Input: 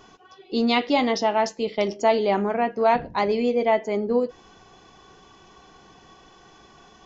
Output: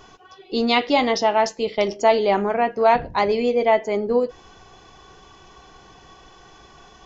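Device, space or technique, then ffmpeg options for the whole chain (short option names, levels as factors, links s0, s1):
low shelf boost with a cut just above: -af "lowshelf=f=86:g=6.5,equalizer=f=220:t=o:w=1.1:g=-5,volume=1.5"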